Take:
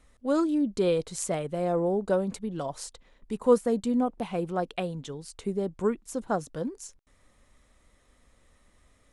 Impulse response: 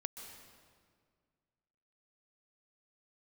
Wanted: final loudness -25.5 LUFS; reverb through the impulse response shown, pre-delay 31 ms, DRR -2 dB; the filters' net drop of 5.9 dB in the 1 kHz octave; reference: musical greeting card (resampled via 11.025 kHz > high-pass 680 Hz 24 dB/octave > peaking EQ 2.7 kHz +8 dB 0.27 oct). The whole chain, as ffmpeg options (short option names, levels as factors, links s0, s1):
-filter_complex "[0:a]equalizer=f=1000:t=o:g=-7,asplit=2[s0][s1];[1:a]atrim=start_sample=2205,adelay=31[s2];[s1][s2]afir=irnorm=-1:irlink=0,volume=1.58[s3];[s0][s3]amix=inputs=2:normalize=0,aresample=11025,aresample=44100,highpass=f=680:w=0.5412,highpass=f=680:w=1.3066,equalizer=f=2700:t=o:w=0.27:g=8,volume=3.55"